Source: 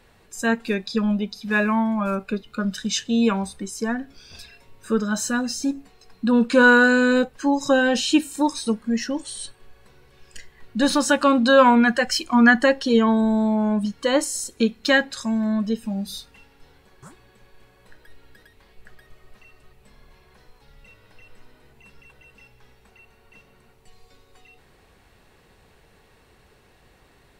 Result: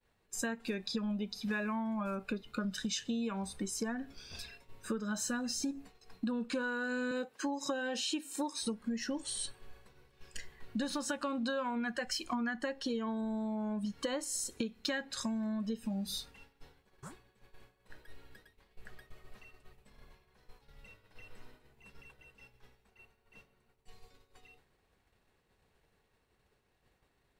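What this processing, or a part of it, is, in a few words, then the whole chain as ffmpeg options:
serial compression, leveller first: -filter_complex "[0:a]asettb=1/sr,asplit=3[a][b][c];[a]atrim=end=7.114[d];[b]atrim=start=7.11:end=8.62,asetpts=PTS-STARTPTS,afade=t=in:d=0.004:c=qsin,afade=t=out:st=1.506:d=0.004:c=qsin,highpass=260[e];[c]atrim=start=8.616[f];[d][e]acrossfade=d=0.004:c1=hsin:c2=qsin[g];[g][f]acrossfade=d=0.004:c1=qsin:c2=hsin,acompressor=threshold=-24dB:ratio=1.5,acompressor=threshold=-29dB:ratio=10,agate=range=-33dB:threshold=-45dB:ratio=3:detection=peak,volume=-3.5dB"

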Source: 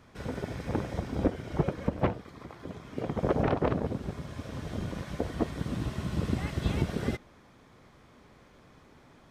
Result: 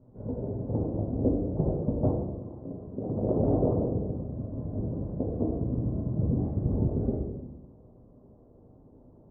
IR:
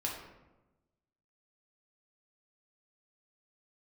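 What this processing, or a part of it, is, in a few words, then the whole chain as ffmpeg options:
next room: -filter_complex "[0:a]lowpass=f=630:w=0.5412,lowpass=f=630:w=1.3066[a];[1:a]atrim=start_sample=2205[b];[a][b]afir=irnorm=-1:irlink=0"

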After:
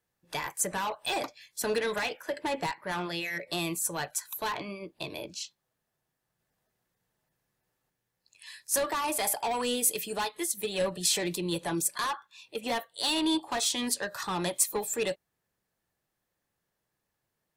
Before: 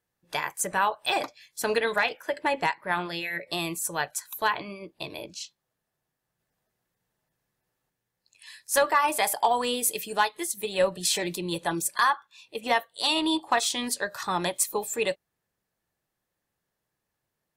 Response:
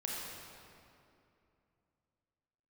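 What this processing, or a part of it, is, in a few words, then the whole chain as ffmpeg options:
one-band saturation: -filter_complex "[0:a]acrossover=split=380|4300[a][b][c];[b]asoftclip=type=tanh:threshold=-29dB[d];[a][d][c]amix=inputs=3:normalize=0"

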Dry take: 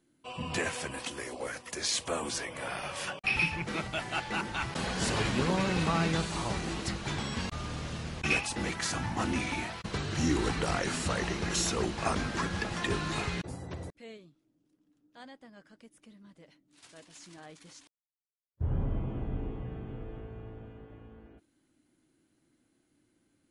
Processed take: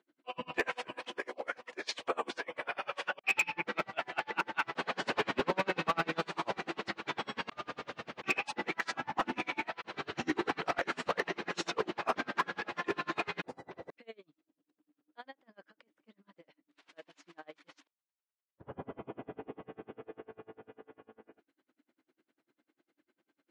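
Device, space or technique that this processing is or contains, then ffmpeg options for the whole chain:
helicopter radio: -af "highpass=390,lowpass=2.8k,aeval=exprs='val(0)*pow(10,-33*(0.5-0.5*cos(2*PI*10*n/s))/20)':c=same,asoftclip=type=hard:threshold=-28.5dB,volume=7dB"

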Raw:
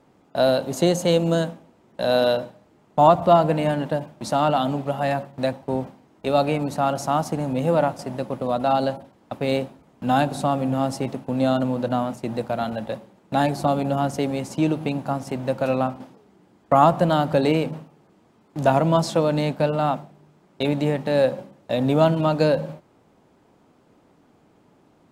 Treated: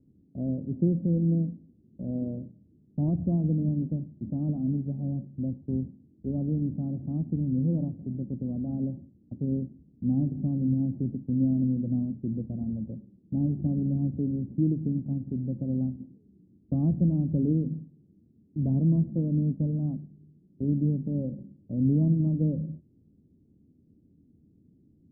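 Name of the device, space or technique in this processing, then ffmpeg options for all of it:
the neighbour's flat through the wall: -af "lowpass=f=280:w=0.5412,lowpass=f=280:w=1.3066,equalizer=f=81:t=o:w=0.42:g=7"

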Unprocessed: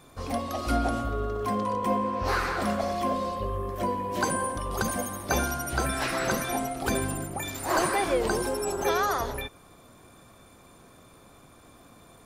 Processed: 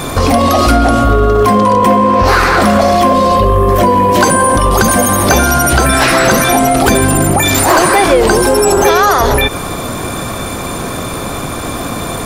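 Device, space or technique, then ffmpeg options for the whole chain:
loud club master: -af "acompressor=threshold=-30dB:ratio=2.5,asoftclip=type=hard:threshold=-24.5dB,alimiter=level_in=34.5dB:limit=-1dB:release=50:level=0:latency=1,volume=-1dB"

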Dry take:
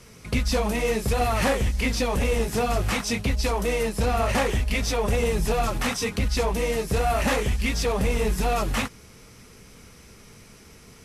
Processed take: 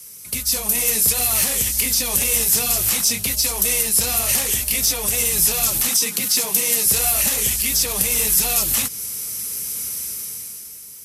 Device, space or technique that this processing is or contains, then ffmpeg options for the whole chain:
FM broadcast chain: -filter_complex "[0:a]asettb=1/sr,asplit=3[a][b][c];[a]atrim=end=5.884[d];[b]atrim=start=5.88:end=6.86,asetpts=PTS-STARTPTS,afade=t=in:d=0.004:c=qsin,afade=t=out:st=0.976:d=0.004:c=qsin,highpass=f=160:w=0.5412,highpass=f=160:w=1.3066[e];[c]atrim=start=6.856[f];[d][e]acrossfade=d=0.004:c1=hsin:c2=qsin[g];[g][f]acrossfade=d=0.004:c1=qsin:c2=hsin,highpass=60,dynaudnorm=f=170:g=11:m=14dB,acrossover=split=200|930|2100|6900[h][i][j][k][l];[h]acompressor=threshold=-20dB:ratio=4[m];[i]acompressor=threshold=-22dB:ratio=4[n];[j]acompressor=threshold=-30dB:ratio=4[o];[k]acompressor=threshold=-24dB:ratio=4[p];[l]acompressor=threshold=-38dB:ratio=4[q];[m][n][o][p][q]amix=inputs=5:normalize=0,aemphasis=mode=production:type=75fm,alimiter=limit=-7.5dB:level=0:latency=1:release=148,asoftclip=type=hard:threshold=-9.5dB,lowpass=f=15k:w=0.5412,lowpass=f=15k:w=1.3066,aemphasis=mode=production:type=75fm,volume=-8.5dB"

